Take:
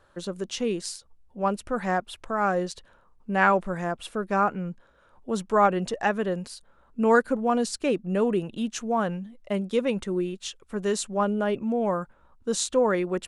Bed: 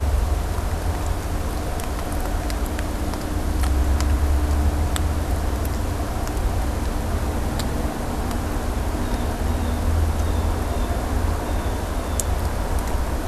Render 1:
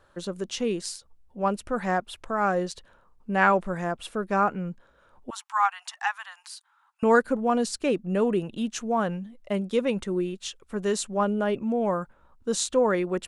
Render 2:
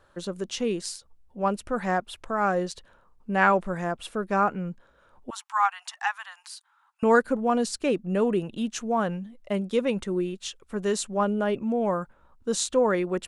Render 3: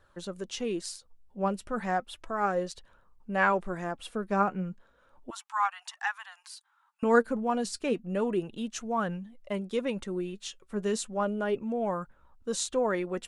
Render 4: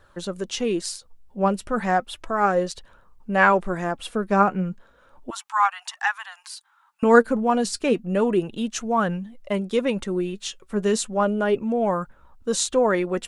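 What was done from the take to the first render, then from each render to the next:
5.30–7.03 s: steep high-pass 810 Hz 72 dB/octave
no audible change
flange 0.33 Hz, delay 0.5 ms, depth 5 ms, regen +63%
trim +8 dB

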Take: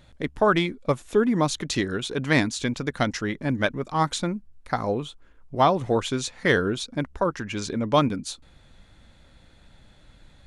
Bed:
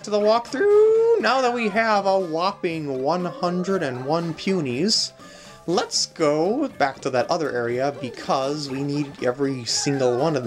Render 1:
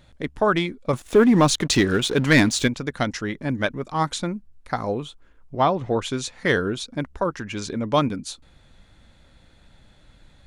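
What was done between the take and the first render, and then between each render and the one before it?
0.93–2.68 s: waveshaping leveller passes 2; 5.56–6.02 s: distance through air 110 m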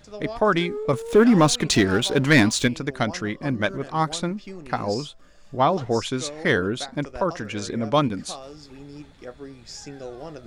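add bed -16.5 dB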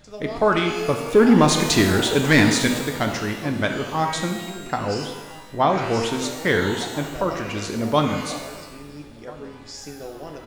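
echo from a far wall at 230 m, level -22 dB; pitch-shifted reverb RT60 1.1 s, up +12 st, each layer -8 dB, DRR 4 dB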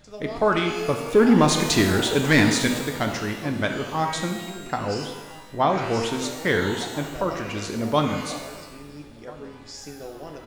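trim -2 dB

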